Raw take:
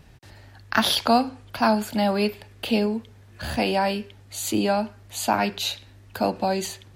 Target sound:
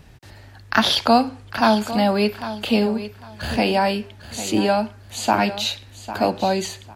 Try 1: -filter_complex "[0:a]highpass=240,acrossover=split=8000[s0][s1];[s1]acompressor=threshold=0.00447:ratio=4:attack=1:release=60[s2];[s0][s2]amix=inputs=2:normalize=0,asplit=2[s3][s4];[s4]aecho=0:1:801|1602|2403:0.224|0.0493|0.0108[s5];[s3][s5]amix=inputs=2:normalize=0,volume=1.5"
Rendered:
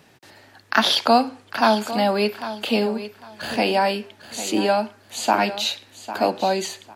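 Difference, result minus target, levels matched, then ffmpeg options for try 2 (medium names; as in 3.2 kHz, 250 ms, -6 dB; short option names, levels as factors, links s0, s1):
250 Hz band -2.5 dB
-filter_complex "[0:a]acrossover=split=8000[s0][s1];[s1]acompressor=threshold=0.00447:ratio=4:attack=1:release=60[s2];[s0][s2]amix=inputs=2:normalize=0,asplit=2[s3][s4];[s4]aecho=0:1:801|1602|2403:0.224|0.0493|0.0108[s5];[s3][s5]amix=inputs=2:normalize=0,volume=1.5"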